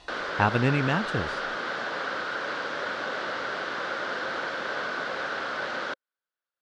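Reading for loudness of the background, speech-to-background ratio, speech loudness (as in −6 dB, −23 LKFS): −31.0 LKFS, 4.5 dB, −26.5 LKFS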